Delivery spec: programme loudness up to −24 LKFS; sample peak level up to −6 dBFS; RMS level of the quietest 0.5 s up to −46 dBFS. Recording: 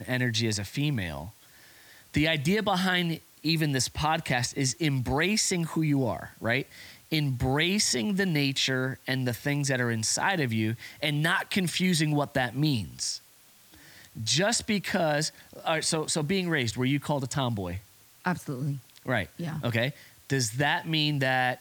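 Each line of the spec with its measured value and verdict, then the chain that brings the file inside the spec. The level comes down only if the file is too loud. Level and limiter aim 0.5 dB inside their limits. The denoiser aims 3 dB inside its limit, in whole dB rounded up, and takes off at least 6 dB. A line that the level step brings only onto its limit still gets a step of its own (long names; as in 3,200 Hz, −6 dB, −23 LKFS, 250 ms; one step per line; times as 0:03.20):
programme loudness −27.5 LKFS: in spec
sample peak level −12.0 dBFS: in spec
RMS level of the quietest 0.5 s −57 dBFS: in spec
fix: no processing needed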